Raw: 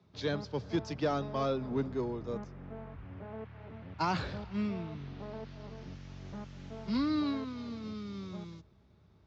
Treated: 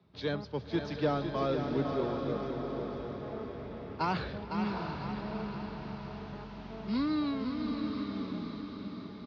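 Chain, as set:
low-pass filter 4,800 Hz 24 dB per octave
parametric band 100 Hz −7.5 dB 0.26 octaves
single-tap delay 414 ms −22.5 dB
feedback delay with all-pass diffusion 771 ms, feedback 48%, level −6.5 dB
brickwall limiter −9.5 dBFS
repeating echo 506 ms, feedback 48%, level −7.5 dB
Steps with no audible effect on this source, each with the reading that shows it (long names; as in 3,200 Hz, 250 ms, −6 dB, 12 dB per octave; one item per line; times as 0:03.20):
brickwall limiter −9.5 dBFS: peak of its input −18.5 dBFS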